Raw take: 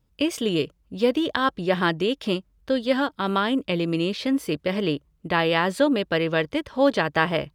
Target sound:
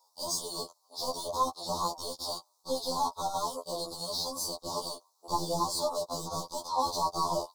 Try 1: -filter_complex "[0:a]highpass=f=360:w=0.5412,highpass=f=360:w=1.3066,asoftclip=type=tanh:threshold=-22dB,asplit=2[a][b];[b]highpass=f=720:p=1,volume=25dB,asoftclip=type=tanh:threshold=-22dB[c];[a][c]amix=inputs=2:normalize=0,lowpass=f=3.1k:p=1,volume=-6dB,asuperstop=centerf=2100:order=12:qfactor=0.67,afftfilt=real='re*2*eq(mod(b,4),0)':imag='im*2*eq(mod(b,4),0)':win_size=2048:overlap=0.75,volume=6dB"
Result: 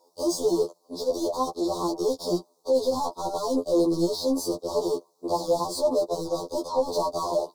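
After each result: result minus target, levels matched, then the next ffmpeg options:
1000 Hz band -6.0 dB; soft clip: distortion +6 dB
-filter_complex "[0:a]highpass=f=900:w=0.5412,highpass=f=900:w=1.3066,asoftclip=type=tanh:threshold=-22dB,asplit=2[a][b];[b]highpass=f=720:p=1,volume=25dB,asoftclip=type=tanh:threshold=-22dB[c];[a][c]amix=inputs=2:normalize=0,lowpass=f=3.1k:p=1,volume=-6dB,asuperstop=centerf=2100:order=12:qfactor=0.67,afftfilt=real='re*2*eq(mod(b,4),0)':imag='im*2*eq(mod(b,4),0)':win_size=2048:overlap=0.75,volume=6dB"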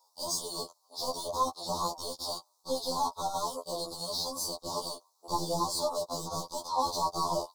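soft clip: distortion +6 dB
-filter_complex "[0:a]highpass=f=900:w=0.5412,highpass=f=900:w=1.3066,asoftclip=type=tanh:threshold=-15.5dB,asplit=2[a][b];[b]highpass=f=720:p=1,volume=25dB,asoftclip=type=tanh:threshold=-22dB[c];[a][c]amix=inputs=2:normalize=0,lowpass=f=3.1k:p=1,volume=-6dB,asuperstop=centerf=2100:order=12:qfactor=0.67,afftfilt=real='re*2*eq(mod(b,4),0)':imag='im*2*eq(mod(b,4),0)':win_size=2048:overlap=0.75,volume=6dB"

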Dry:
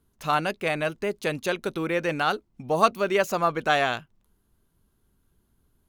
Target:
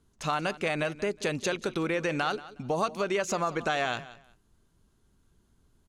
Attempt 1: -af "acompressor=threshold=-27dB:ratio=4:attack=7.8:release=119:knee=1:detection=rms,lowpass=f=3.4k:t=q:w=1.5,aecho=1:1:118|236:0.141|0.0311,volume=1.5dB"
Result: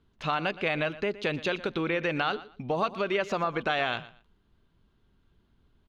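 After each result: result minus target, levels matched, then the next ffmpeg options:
8000 Hz band -15.0 dB; echo 64 ms early
-af "acompressor=threshold=-27dB:ratio=4:attack=7.8:release=119:knee=1:detection=rms,lowpass=f=7.5k:t=q:w=1.5,aecho=1:1:118|236:0.141|0.0311,volume=1.5dB"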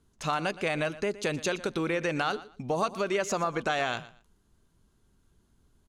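echo 64 ms early
-af "acompressor=threshold=-27dB:ratio=4:attack=7.8:release=119:knee=1:detection=rms,lowpass=f=7.5k:t=q:w=1.5,aecho=1:1:182|364:0.141|0.0311,volume=1.5dB"

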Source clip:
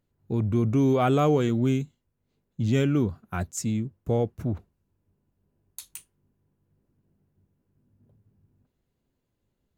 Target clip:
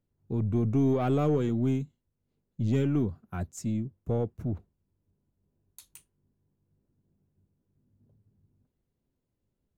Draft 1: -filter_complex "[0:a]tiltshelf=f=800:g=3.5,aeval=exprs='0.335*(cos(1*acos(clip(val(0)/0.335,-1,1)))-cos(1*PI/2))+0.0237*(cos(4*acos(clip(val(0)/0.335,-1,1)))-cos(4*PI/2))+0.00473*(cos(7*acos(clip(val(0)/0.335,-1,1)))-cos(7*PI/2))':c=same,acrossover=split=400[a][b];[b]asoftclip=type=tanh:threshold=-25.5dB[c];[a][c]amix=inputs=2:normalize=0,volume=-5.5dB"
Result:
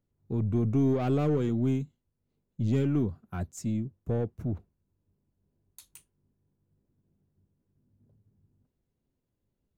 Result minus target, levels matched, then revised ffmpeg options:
soft clip: distortion +9 dB
-filter_complex "[0:a]tiltshelf=f=800:g=3.5,aeval=exprs='0.335*(cos(1*acos(clip(val(0)/0.335,-1,1)))-cos(1*PI/2))+0.0237*(cos(4*acos(clip(val(0)/0.335,-1,1)))-cos(4*PI/2))+0.00473*(cos(7*acos(clip(val(0)/0.335,-1,1)))-cos(7*PI/2))':c=same,acrossover=split=400[a][b];[b]asoftclip=type=tanh:threshold=-18.5dB[c];[a][c]amix=inputs=2:normalize=0,volume=-5.5dB"

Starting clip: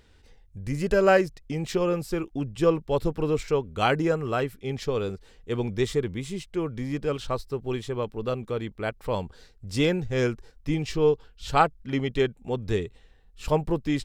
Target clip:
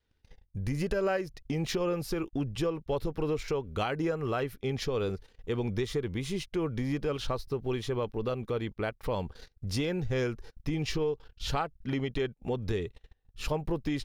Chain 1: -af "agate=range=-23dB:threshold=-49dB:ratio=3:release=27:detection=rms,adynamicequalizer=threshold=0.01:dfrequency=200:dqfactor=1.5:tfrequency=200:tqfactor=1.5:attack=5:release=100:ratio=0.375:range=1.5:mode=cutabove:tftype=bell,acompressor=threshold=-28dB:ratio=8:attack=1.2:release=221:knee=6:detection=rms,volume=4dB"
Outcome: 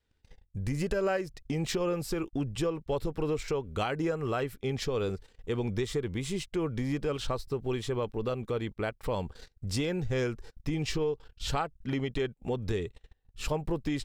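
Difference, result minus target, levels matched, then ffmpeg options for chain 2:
8000 Hz band +2.5 dB
-af "agate=range=-23dB:threshold=-49dB:ratio=3:release=27:detection=rms,adynamicequalizer=threshold=0.01:dfrequency=200:dqfactor=1.5:tfrequency=200:tqfactor=1.5:attack=5:release=100:ratio=0.375:range=1.5:mode=cutabove:tftype=bell,acompressor=threshold=-28dB:ratio=8:attack=1.2:release=221:knee=6:detection=rms,equalizer=f=7.8k:w=7.4:g=-13.5,volume=4dB"

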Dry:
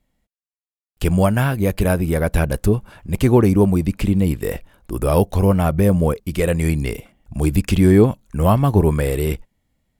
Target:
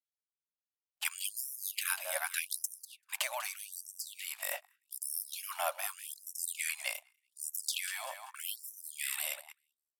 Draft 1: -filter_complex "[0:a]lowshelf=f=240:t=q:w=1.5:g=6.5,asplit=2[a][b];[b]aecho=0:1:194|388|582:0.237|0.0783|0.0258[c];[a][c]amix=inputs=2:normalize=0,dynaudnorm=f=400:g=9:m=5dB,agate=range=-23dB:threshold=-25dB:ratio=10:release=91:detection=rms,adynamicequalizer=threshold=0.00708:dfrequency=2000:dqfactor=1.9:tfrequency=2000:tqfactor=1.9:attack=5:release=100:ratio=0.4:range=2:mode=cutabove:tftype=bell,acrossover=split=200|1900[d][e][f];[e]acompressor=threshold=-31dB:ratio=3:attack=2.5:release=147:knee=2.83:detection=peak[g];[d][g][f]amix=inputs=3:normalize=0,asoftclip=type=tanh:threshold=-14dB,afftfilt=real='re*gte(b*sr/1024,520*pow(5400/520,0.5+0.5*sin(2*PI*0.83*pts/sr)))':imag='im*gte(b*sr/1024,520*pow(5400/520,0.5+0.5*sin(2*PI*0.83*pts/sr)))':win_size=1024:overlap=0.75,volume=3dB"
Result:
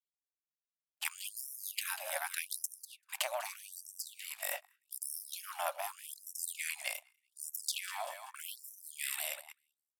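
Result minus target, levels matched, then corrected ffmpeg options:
soft clip: distortion +12 dB
-filter_complex "[0:a]lowshelf=f=240:t=q:w=1.5:g=6.5,asplit=2[a][b];[b]aecho=0:1:194|388|582:0.237|0.0783|0.0258[c];[a][c]amix=inputs=2:normalize=0,dynaudnorm=f=400:g=9:m=5dB,agate=range=-23dB:threshold=-25dB:ratio=10:release=91:detection=rms,adynamicequalizer=threshold=0.00708:dfrequency=2000:dqfactor=1.9:tfrequency=2000:tqfactor=1.9:attack=5:release=100:ratio=0.4:range=2:mode=cutabove:tftype=bell,acrossover=split=200|1900[d][e][f];[e]acompressor=threshold=-31dB:ratio=3:attack=2.5:release=147:knee=2.83:detection=peak[g];[d][g][f]amix=inputs=3:normalize=0,asoftclip=type=tanh:threshold=-5dB,afftfilt=real='re*gte(b*sr/1024,520*pow(5400/520,0.5+0.5*sin(2*PI*0.83*pts/sr)))':imag='im*gte(b*sr/1024,520*pow(5400/520,0.5+0.5*sin(2*PI*0.83*pts/sr)))':win_size=1024:overlap=0.75,volume=3dB"

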